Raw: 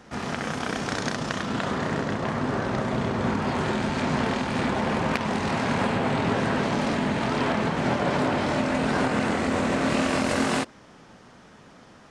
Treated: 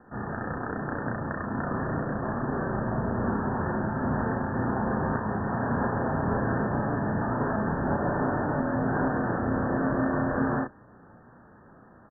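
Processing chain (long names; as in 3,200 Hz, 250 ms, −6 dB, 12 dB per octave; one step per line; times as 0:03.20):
sub-octave generator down 1 octave, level −5 dB
Chebyshev low-pass filter 1,800 Hz, order 10
double-tracking delay 34 ms −3.5 dB
level −4 dB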